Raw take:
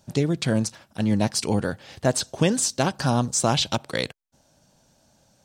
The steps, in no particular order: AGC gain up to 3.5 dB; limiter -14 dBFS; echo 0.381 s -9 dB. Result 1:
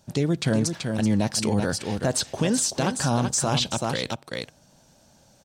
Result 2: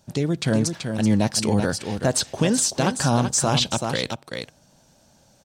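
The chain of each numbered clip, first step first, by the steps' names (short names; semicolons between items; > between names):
echo > AGC > limiter; echo > limiter > AGC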